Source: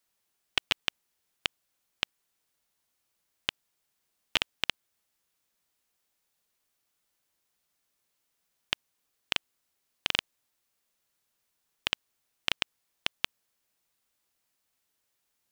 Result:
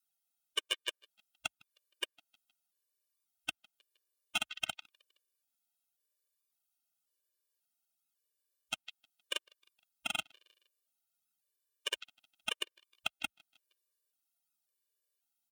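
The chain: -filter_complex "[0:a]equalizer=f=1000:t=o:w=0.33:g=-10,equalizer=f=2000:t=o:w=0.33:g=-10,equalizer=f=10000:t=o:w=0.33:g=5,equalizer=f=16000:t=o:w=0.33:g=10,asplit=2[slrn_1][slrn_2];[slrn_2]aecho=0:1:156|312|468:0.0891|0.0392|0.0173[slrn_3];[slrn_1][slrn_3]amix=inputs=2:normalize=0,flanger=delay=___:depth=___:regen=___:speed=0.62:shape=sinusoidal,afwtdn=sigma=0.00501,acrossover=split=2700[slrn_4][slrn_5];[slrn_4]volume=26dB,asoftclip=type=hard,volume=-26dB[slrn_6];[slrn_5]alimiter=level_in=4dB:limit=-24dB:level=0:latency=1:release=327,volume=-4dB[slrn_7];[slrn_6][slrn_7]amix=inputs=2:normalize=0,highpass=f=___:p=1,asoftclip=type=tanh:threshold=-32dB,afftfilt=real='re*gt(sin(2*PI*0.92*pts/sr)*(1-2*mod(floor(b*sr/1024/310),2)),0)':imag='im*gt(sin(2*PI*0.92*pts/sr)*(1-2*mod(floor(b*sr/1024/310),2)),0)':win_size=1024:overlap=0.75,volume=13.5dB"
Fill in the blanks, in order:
0.8, 7.5, -1, 440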